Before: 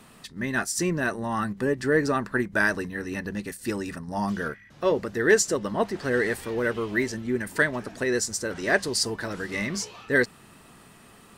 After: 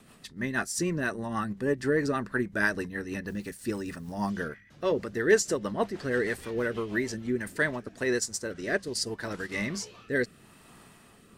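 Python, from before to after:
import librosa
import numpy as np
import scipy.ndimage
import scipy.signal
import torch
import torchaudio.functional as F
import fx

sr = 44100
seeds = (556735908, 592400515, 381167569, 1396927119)

y = fx.dmg_noise_colour(x, sr, seeds[0], colour='white', level_db=-59.0, at=(3.26, 4.28), fade=0.02)
y = fx.transient(y, sr, attack_db=0, sustain_db=-6, at=(7.75, 9.58))
y = fx.rotary_switch(y, sr, hz=6.3, then_hz=0.75, switch_at_s=7.19)
y = y * 10.0 ** (-1.5 / 20.0)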